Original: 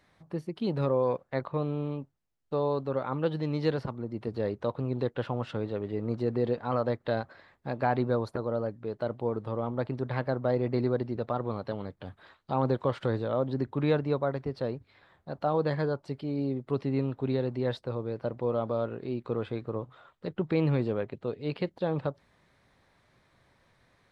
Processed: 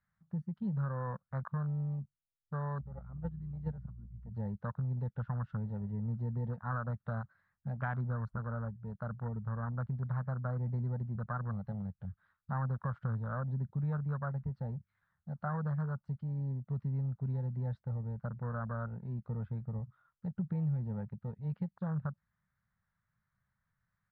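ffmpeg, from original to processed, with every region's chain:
-filter_complex "[0:a]asettb=1/sr,asplit=3[s0][s1][s2];[s0]atrim=end=2.814[s3];[s1]atrim=start=2.81:end=4.32,asetpts=PTS-STARTPTS,afade=t=in:d=0.004:c=qsin,afade=t=out:st=1.506:d=0.004:c=qsin,highshelf=f=4400:g=-10.5,aeval=exprs='val(0)+0.0112*(sin(2*PI*60*n/s)+sin(2*PI*2*60*n/s)/2+sin(2*PI*3*60*n/s)/3+sin(2*PI*4*60*n/s)/4+sin(2*PI*5*60*n/s)/5)':c=same,agate=range=0.282:threshold=0.0447:ratio=16:release=100:detection=peak[s4];[s2]atrim=start=4.316[s5];[s3][s4]acrossfade=d=0.004:c1=hsin:c2=qsin[s6];[s6][s5]acrossfade=d=0.004:c1=qsin:c2=hsin,afwtdn=0.02,firequalizer=gain_entry='entry(200,0);entry(290,-26);entry(520,-18);entry(1400,1);entry(2500,-15);entry(4600,-17)':delay=0.05:min_phase=1,acompressor=threshold=0.0178:ratio=3,volume=1.33"

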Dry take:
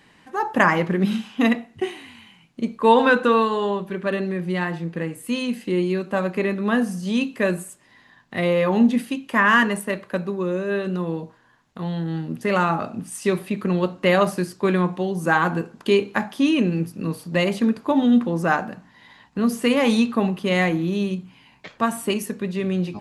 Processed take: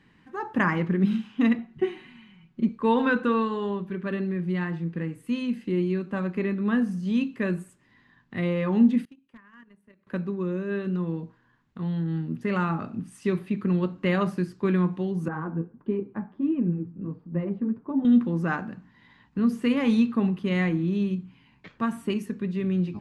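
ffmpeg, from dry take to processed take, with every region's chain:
-filter_complex "[0:a]asettb=1/sr,asplit=3[s0][s1][s2];[s0]atrim=end=1.584[s3];[s1]atrim=start=1.58:end=2.69,asetpts=PTS-STARTPTS,afade=t=in:d=0.004:c=qsin,afade=t=out:st=1.106:d=0.004:c=qsin,highshelf=f=5100:g=-8.5,aecho=1:1:5.4:0.92,atrim=end_sample=48951[s4];[s2]atrim=start=2.686[s5];[s3][s4]acrossfade=d=0.004:c1=hsin:c2=qsin[s6];[s6][s5]acrossfade=d=0.004:c1=qsin:c2=hsin,asettb=1/sr,asplit=3[s7][s8][s9];[s7]atrim=end=9.054[s10];[s8]atrim=start=9.05:end=10.07,asetpts=PTS-STARTPTS,afade=t=in:d=0.004:c=qsin,afade=t=out:st=1.016:d=0.004:c=qsin,acompressor=threshold=0.0282:ratio=10:attack=3.2:release=140:knee=1:detection=peak,agate=range=0.0708:threshold=0.0224:ratio=16:release=100:detection=peak,aeval=exprs='0.0168*(abs(mod(val(0)/0.0168+3,4)-2)-1)':c=same[s11];[s9]atrim=start=10.066[s12];[s10][s11]acrossfade=d=0.004:c1=hsin:c2=qsin[s13];[s13][s12]acrossfade=d=0.004:c1=qsin:c2=hsin,asettb=1/sr,asplit=3[s14][s15][s16];[s14]atrim=end=15.284[s17];[s15]atrim=start=15.28:end=18.05,asetpts=PTS-STARTPTS,afade=t=in:d=0.004:c=qsin,afade=t=out:st=2.766:d=0.004:c=qsin,lowpass=1000,flanger=delay=3.4:depth=9:regen=32:speed=1.5:shape=triangular[s18];[s16]atrim=start=18.046[s19];[s17][s18]acrossfade=d=0.004:c1=hsin:c2=qsin[s20];[s20][s19]acrossfade=d=0.004:c1=qsin:c2=hsin,lowpass=f=1100:p=1,equalizer=f=650:w=1.1:g=-12"

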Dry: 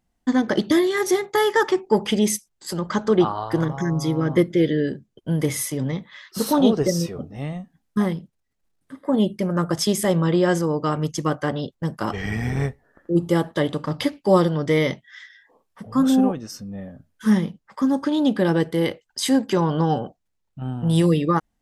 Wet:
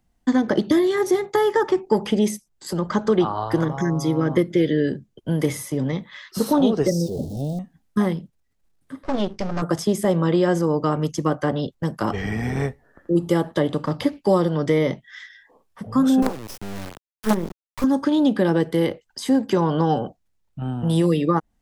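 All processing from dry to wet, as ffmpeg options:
-filter_complex "[0:a]asettb=1/sr,asplit=3[s0][s1][s2];[s0]atrim=end=6.914[s3];[s1]atrim=start=6.91:end=7.59,asetpts=PTS-STARTPTS,afade=t=in:d=0.004:c=qsin,afade=t=out:st=0.676:d=0.004:c=qsin,aeval=exprs='val(0)+0.5*0.02*sgn(val(0))':c=same,asuperstop=centerf=1700:order=8:qfactor=0.54,equalizer=f=1300:w=6:g=-4.5[s4];[s2]atrim=start=7.586[s5];[s3][s4]acrossfade=d=0.004:c1=hsin:c2=qsin[s6];[s6][s5]acrossfade=d=0.004:c1=qsin:c2=hsin,asettb=1/sr,asplit=3[s7][s8][s9];[s7]atrim=end=9.034[s10];[s8]atrim=start=9.03:end=9.62,asetpts=PTS-STARTPTS,afade=t=in:d=0.004:c=qsin,afade=t=out:st=0.586:d=0.004:c=qsin,asubboost=boost=8.5:cutoff=200,aeval=exprs='max(val(0),0)':c=same,lowpass=f=5700:t=q:w=2.4[s11];[s9]atrim=start=9.616[s12];[s10][s11]acrossfade=d=0.004:c1=hsin:c2=qsin[s13];[s13][s12]acrossfade=d=0.004:c1=qsin:c2=hsin,asettb=1/sr,asplit=3[s14][s15][s16];[s14]atrim=end=16.224[s17];[s15]atrim=start=16.22:end=17.84,asetpts=PTS-STARTPTS,afade=t=in:d=0.004:c=qsin,afade=t=out:st=1.616:d=0.004:c=qsin,highpass=f=83:w=0.5412,highpass=f=83:w=1.3066,acrusher=bits=3:dc=4:mix=0:aa=0.000001[s18];[s16]atrim=start=17.836[s19];[s17][s18]acrossfade=d=0.004:c1=hsin:c2=qsin[s20];[s20][s19]acrossfade=d=0.004:c1=qsin:c2=hsin,lowshelf=f=140:g=4.5,acrossover=split=200|1200[s21][s22][s23];[s21]acompressor=threshold=0.0251:ratio=4[s24];[s22]acompressor=threshold=0.126:ratio=4[s25];[s23]acompressor=threshold=0.0158:ratio=4[s26];[s24][s25][s26]amix=inputs=3:normalize=0,volume=1.33"

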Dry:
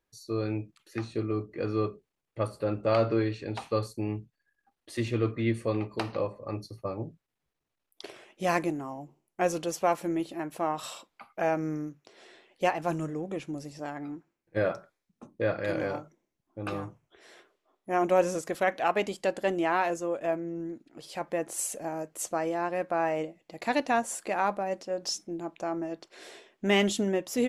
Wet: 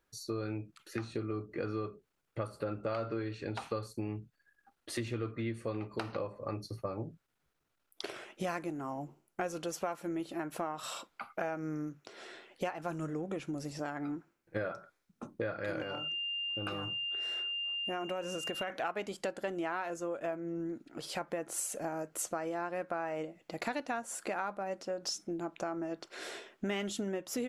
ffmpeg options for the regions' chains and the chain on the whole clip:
-filter_complex "[0:a]asettb=1/sr,asplit=3[s0][s1][s2];[s0]atrim=end=15.824[s3];[s1]atrim=start=15.82:end=18.7,asetpts=PTS-STARTPTS,afade=t=in:d=0.004:c=qsin,afade=t=out:st=2.876:d=0.004:c=qsin,aeval=exprs='val(0)+0.0158*sin(2*PI*2800*n/s)':c=same,acompressor=threshold=0.0158:ratio=2:attack=3.2:release=140:knee=1:detection=peak[s4];[s2]atrim=start=18.696[s5];[s3][s4]acrossfade=d=0.004:c1=hsin:c2=qsin[s6];[s6][s5]acrossfade=d=0.004:c1=qsin:c2=hsin,equalizer=f=1400:w=4.8:g=7.5,acompressor=threshold=0.0126:ratio=5,volume=1.5"

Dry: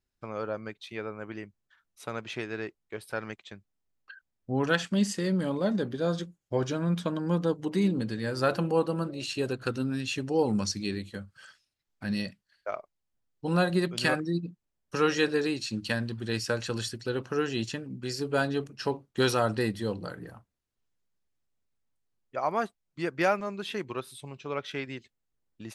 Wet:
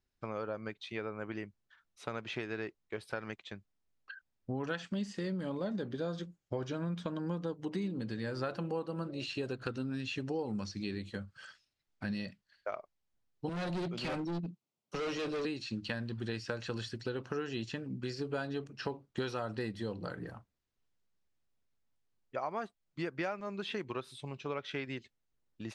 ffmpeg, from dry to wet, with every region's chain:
-filter_complex "[0:a]asettb=1/sr,asplit=3[s0][s1][s2];[s0]atrim=end=13.494[s3];[s1]atrim=start=13.49:end=15.45,asetpts=PTS-STARTPTS,afade=t=in:d=0.004:c=qsin,afade=t=out:st=1.956:d=0.004:c=qsin,highpass=f=120:w=0.5412,highpass=f=120:w=1.3066,equalizer=f=1700:w=5.9:g=-15,volume=39.8,asoftclip=hard,volume=0.0251[s4];[s2]atrim=start=15.446[s5];[s3][s4]acrossfade=d=0.004:c1=hsin:c2=qsin[s6];[s6][s5]acrossfade=d=0.004:c1=qsin:c2=hsin,acompressor=threshold=0.02:ratio=5,lowpass=6600,acrossover=split=4300[s7][s8];[s8]acompressor=threshold=0.00224:ratio=4:attack=1:release=60[s9];[s7][s9]amix=inputs=2:normalize=0"

